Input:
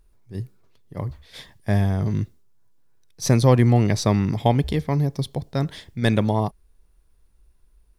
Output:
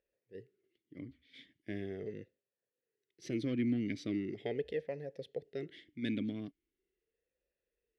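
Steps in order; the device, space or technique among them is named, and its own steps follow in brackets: talk box (valve stage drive 12 dB, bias 0.45; talking filter e-i 0.4 Hz)

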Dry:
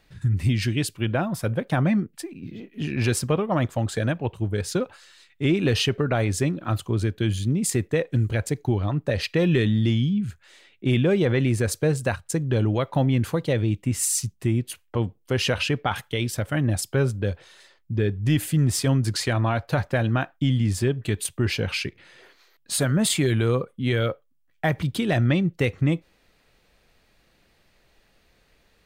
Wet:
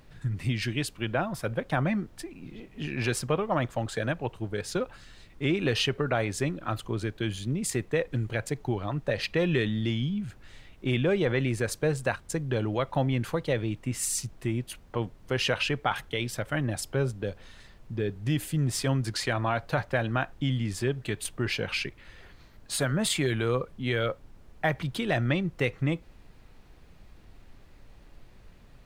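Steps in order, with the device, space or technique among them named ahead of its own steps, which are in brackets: high-pass 540 Hz 6 dB/octave; 16.85–18.71 s: dynamic bell 1.7 kHz, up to -5 dB, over -45 dBFS, Q 0.76; car interior (peaking EQ 130 Hz +6.5 dB 0.78 oct; treble shelf 4.3 kHz -7.5 dB; brown noise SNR 20 dB)

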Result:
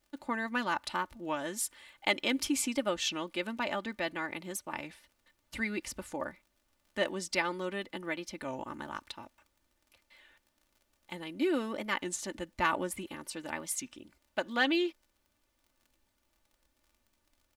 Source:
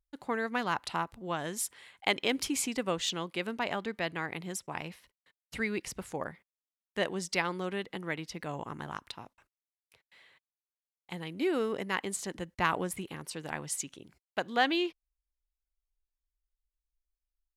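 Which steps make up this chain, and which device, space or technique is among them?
warped LP (warped record 33 1/3 rpm, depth 160 cents; crackle 30 per s -51 dBFS; pink noise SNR 40 dB); comb 3.4 ms, depth 66%; trim -2 dB

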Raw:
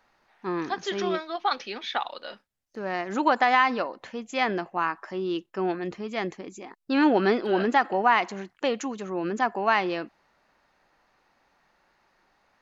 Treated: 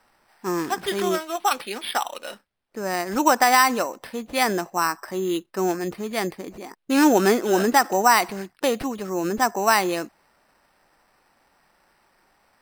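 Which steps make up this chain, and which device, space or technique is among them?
crushed at another speed (playback speed 0.5×; sample-and-hold 13×; playback speed 2×); trim +4 dB

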